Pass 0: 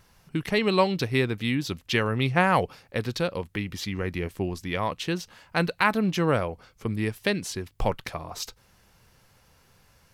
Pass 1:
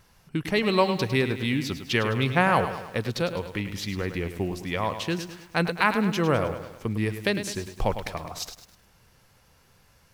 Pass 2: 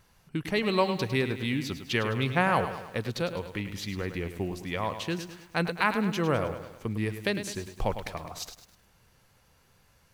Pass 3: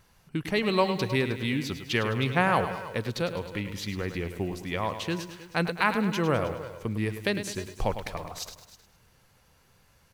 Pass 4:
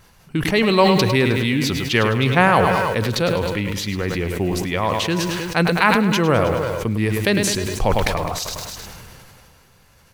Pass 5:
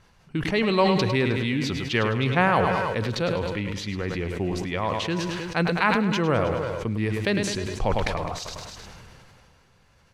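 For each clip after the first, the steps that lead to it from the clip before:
bit-crushed delay 104 ms, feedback 55%, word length 8-bit, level -10 dB
band-stop 5.3 kHz, Q 23; trim -3.5 dB
delay 314 ms -17 dB; trim +1 dB
decay stretcher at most 22 dB/s; trim +8 dB
distance through air 64 m; trim -5.5 dB

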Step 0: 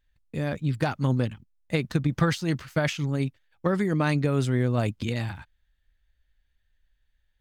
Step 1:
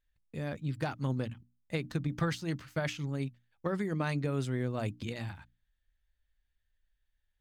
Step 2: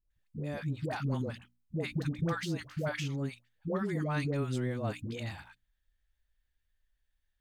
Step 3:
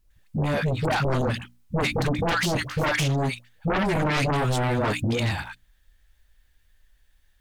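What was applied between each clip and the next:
hum notches 60/120/180/240/300 Hz; trim -8 dB
phase dispersion highs, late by 107 ms, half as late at 570 Hz
sine folder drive 13 dB, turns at -20 dBFS

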